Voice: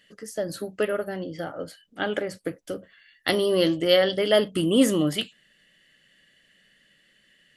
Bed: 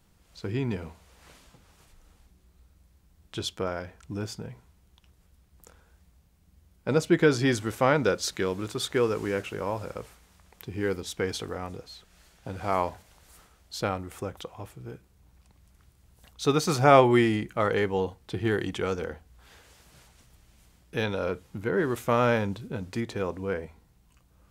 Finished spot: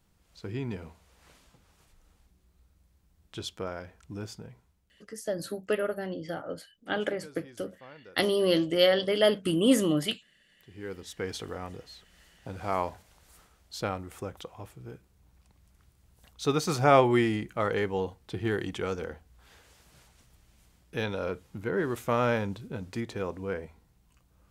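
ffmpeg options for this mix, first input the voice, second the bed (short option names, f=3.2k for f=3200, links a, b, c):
-filter_complex "[0:a]adelay=4900,volume=-3dB[a];[1:a]volume=19.5dB,afade=t=out:st=4.31:d=0.9:silence=0.0749894,afade=t=in:st=10.5:d=0.97:silence=0.0595662[b];[a][b]amix=inputs=2:normalize=0"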